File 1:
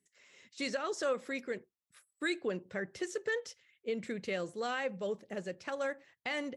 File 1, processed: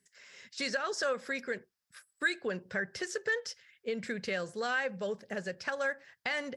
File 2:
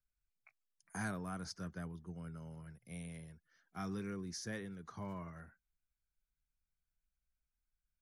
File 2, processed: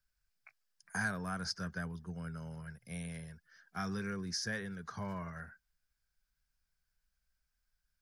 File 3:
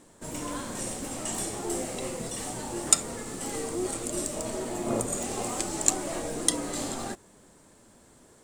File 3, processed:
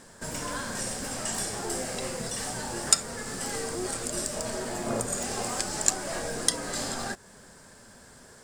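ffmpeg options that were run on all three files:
-filter_complex "[0:a]equalizer=f=315:t=o:w=0.33:g=-10,equalizer=f=1.6k:t=o:w=0.33:g=9,equalizer=f=5k:t=o:w=0.33:g=8,asplit=2[a][b];[b]acompressor=threshold=-40dB:ratio=6,volume=2.5dB[c];[a][c]amix=inputs=2:normalize=0,volume=-2.5dB"

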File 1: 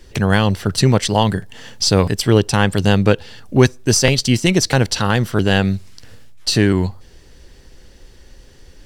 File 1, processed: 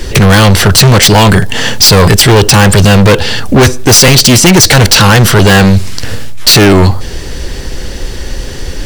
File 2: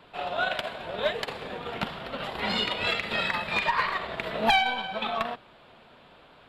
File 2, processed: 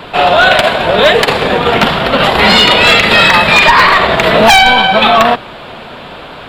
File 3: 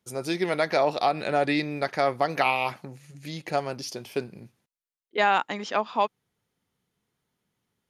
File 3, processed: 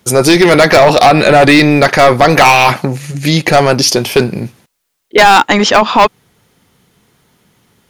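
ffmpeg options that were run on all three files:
-af "volume=17dB,asoftclip=hard,volume=-17dB,apsyclip=27dB,volume=-1.5dB"

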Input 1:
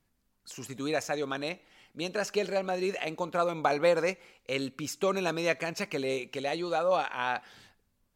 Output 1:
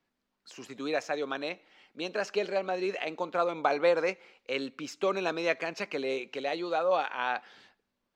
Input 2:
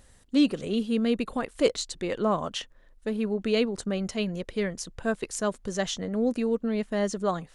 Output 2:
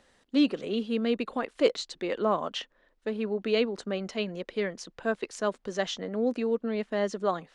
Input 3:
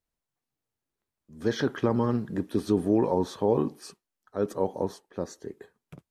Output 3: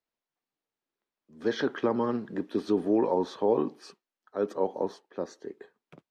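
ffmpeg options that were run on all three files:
-filter_complex "[0:a]acrossover=split=210 5500:gain=0.141 1 0.141[a][b][c];[a][b][c]amix=inputs=3:normalize=0"

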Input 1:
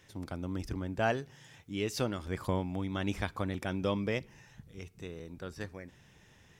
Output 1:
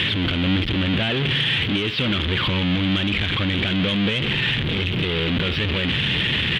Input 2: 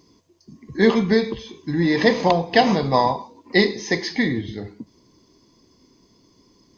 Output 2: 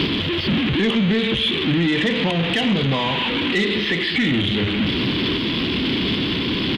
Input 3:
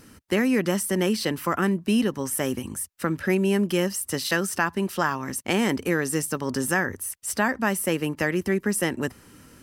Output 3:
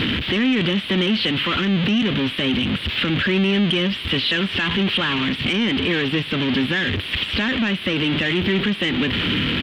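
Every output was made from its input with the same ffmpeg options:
-filter_complex "[0:a]aeval=exprs='val(0)+0.5*0.158*sgn(val(0))':c=same,highpass=f=100:p=1,bandreject=f=6.4k:w=26,acrossover=split=3000[a][b];[b]acompressor=threshold=-36dB:ratio=4:attack=1:release=60[c];[a][c]amix=inputs=2:normalize=0,firequalizer=gain_entry='entry(200,0);entry(720,-12);entry(3200,14);entry(6300,-23)':delay=0.05:min_phase=1,acontrast=85,alimiter=limit=-14dB:level=0:latency=1:release=497,volume=1.5dB"

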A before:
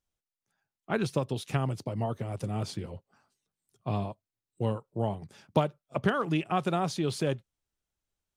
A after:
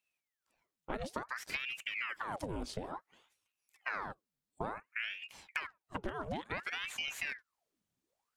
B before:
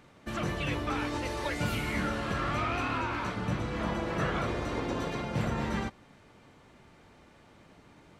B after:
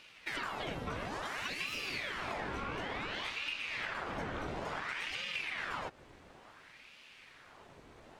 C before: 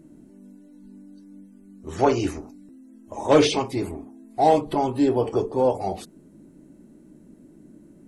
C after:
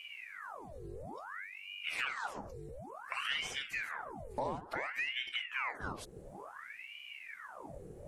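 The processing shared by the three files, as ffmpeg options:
-af "acompressor=threshold=-36dB:ratio=8,aeval=exprs='val(0)*sin(2*PI*1400*n/s+1400*0.9/0.57*sin(2*PI*0.57*n/s))':c=same,volume=3dB"

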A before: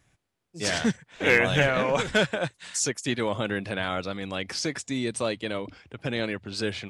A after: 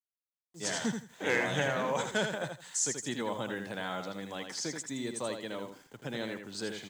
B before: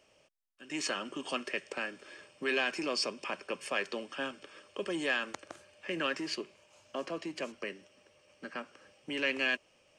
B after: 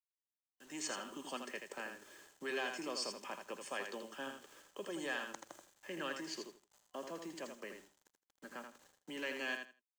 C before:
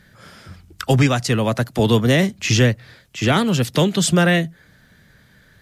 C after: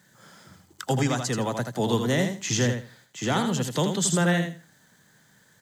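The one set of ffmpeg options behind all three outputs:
-af "highpass=f=120:w=0.5412,highpass=f=120:w=1.3066,acrusher=bits=8:mix=0:aa=0.000001,superequalizer=9b=1.58:12b=0.562:15b=2,aecho=1:1:81|162|243:0.473|0.0899|0.0171,volume=-8.5dB"

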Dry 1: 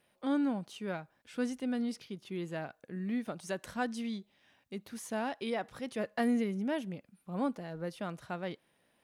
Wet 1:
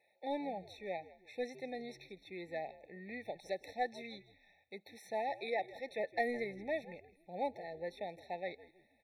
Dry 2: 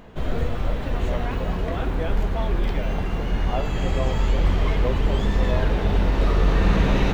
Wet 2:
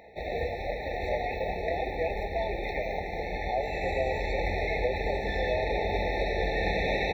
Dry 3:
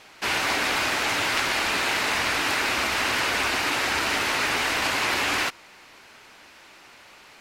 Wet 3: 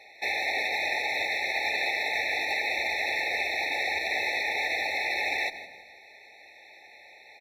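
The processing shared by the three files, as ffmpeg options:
-filter_complex "[0:a]highpass=81,asplit=2[a][b];[b]acrusher=bits=3:mix=0:aa=0.5,volume=-11dB[c];[a][c]amix=inputs=2:normalize=0,equalizer=f=125:t=o:w=1:g=-11,equalizer=f=250:t=o:w=1:g=-10,equalizer=f=500:t=o:w=1:g=4,equalizer=f=1k:t=o:w=1:g=7,equalizer=f=2k:t=o:w=1:g=5,equalizer=f=4k:t=o:w=1:g=6,equalizer=f=8k:t=o:w=1:g=-11,asplit=4[d][e][f][g];[e]adelay=161,afreqshift=-100,volume=-18dB[h];[f]adelay=322,afreqshift=-200,volume=-27.1dB[i];[g]adelay=483,afreqshift=-300,volume=-36.2dB[j];[d][h][i][j]amix=inputs=4:normalize=0,alimiter=limit=-12dB:level=0:latency=1:release=98,afftfilt=real='re*eq(mod(floor(b*sr/1024/880),2),0)':imag='im*eq(mod(floor(b*sr/1024/880),2),0)':win_size=1024:overlap=0.75,volume=-4.5dB"

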